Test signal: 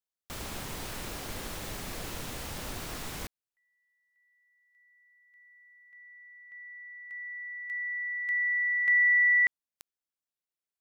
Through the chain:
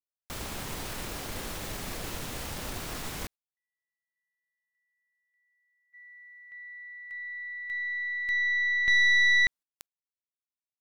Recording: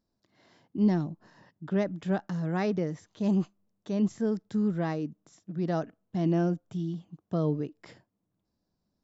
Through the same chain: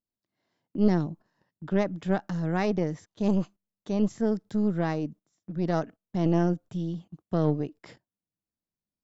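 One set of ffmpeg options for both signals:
-af "aeval=exprs='0.168*(cos(1*acos(clip(val(0)/0.168,-1,1)))-cos(1*PI/2))+0.075*(cos(2*acos(clip(val(0)/0.168,-1,1)))-cos(2*PI/2))+0.0075*(cos(5*acos(clip(val(0)/0.168,-1,1)))-cos(5*PI/2))':c=same,agate=range=0.126:threshold=0.00282:ratio=16:release=89:detection=rms"

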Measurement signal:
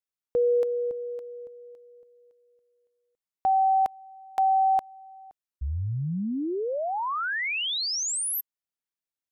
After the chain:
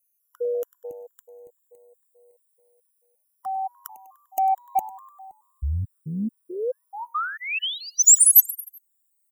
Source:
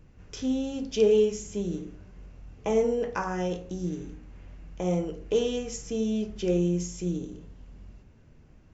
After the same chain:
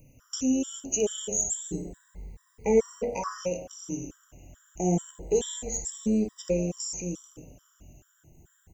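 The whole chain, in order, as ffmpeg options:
-filter_complex "[0:a]afftfilt=real='re*pow(10,12/40*sin(2*PI*(0.91*log(max(b,1)*sr/1024/100)/log(2)-(0.28)*(pts-256)/sr)))':imag='im*pow(10,12/40*sin(2*PI*(0.91*log(max(b,1)*sr/1024/100)/log(2)-(0.28)*(pts-256)/sr)))':win_size=1024:overlap=0.75,aexciter=amount=15:drive=4.4:freq=6800,asplit=2[s0][s1];[s1]asplit=4[s2][s3][s4][s5];[s2]adelay=99,afreqshift=100,volume=0.106[s6];[s3]adelay=198,afreqshift=200,volume=0.055[s7];[s4]adelay=297,afreqshift=300,volume=0.0285[s8];[s5]adelay=396,afreqshift=400,volume=0.015[s9];[s6][s7][s8][s9]amix=inputs=4:normalize=0[s10];[s0][s10]amix=inputs=2:normalize=0,acontrast=33,afftfilt=real='re*gt(sin(2*PI*2.3*pts/sr)*(1-2*mod(floor(b*sr/1024/980),2)),0)':imag='im*gt(sin(2*PI*2.3*pts/sr)*(1-2*mod(floor(b*sr/1024/980),2)),0)':win_size=1024:overlap=0.75,volume=0.501"

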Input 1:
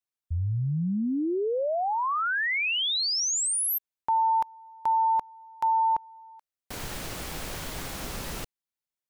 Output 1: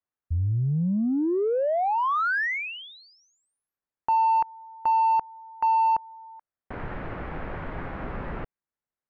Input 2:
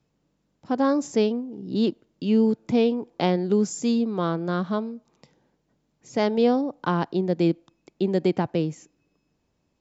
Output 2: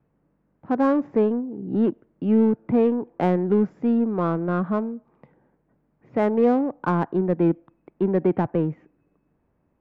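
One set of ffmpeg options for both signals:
-filter_complex "[0:a]lowpass=f=1900:w=0.5412,lowpass=f=1900:w=1.3066,asplit=2[s0][s1];[s1]asoftclip=type=tanh:threshold=0.0473,volume=0.562[s2];[s0][s2]amix=inputs=2:normalize=0"

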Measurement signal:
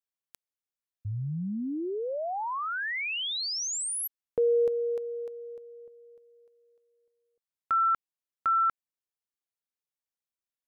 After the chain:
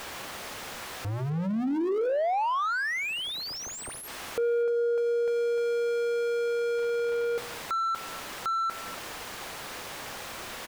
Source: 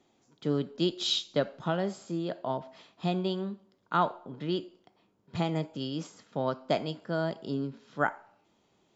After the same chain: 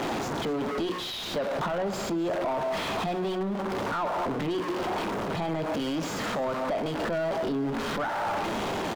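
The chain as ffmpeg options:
-filter_complex "[0:a]aeval=exprs='val(0)+0.5*0.0376*sgn(val(0))':c=same,bandreject=f=60:t=h:w=6,bandreject=f=120:t=h:w=6,bandreject=f=180:t=h:w=6,bandreject=f=240:t=h:w=6,bandreject=f=300:t=h:w=6,bandreject=f=360:t=h:w=6,bandreject=f=420:t=h:w=6,bandreject=f=480:t=h:w=6,acompressor=threshold=0.0316:ratio=6:attack=3.1:release=302:detection=peak,aecho=1:1:251:0.075,asplit=2[s0][s1];[s1]highpass=f=720:p=1,volume=17.8,asoftclip=type=tanh:threshold=0.112[s2];[s0][s2]amix=inputs=2:normalize=0,lowpass=f=1100:p=1,volume=0.501"

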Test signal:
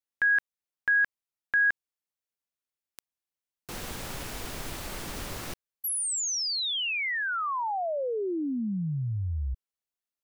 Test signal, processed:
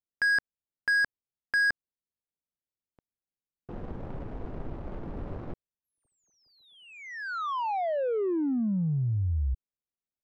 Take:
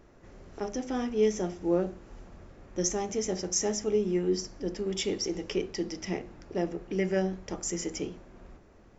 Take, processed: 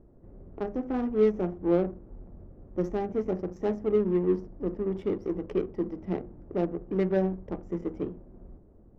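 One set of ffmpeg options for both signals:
-af "tiltshelf=f=1500:g=3,adynamicsmooth=sensitivity=1.5:basefreq=540"

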